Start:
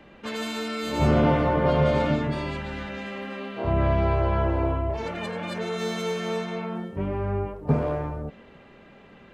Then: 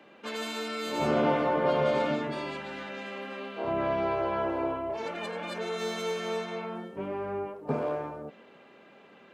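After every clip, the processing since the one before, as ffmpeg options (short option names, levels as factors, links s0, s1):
-af "highpass=270,bandreject=f=1900:w=16,volume=0.75"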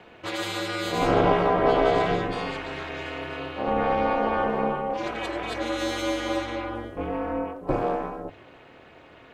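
-af "aeval=exprs='val(0)*sin(2*PI*120*n/s)':c=same,bandreject=f=50:t=h:w=6,bandreject=f=100:t=h:w=6,volume=2.51"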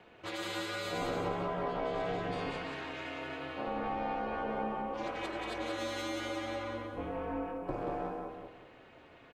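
-af "acompressor=threshold=0.0631:ratio=5,aecho=1:1:182|364|546|728:0.631|0.202|0.0646|0.0207,volume=0.376"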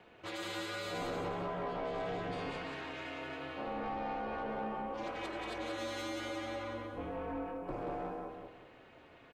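-af "asoftclip=type=tanh:threshold=0.0376,volume=0.841"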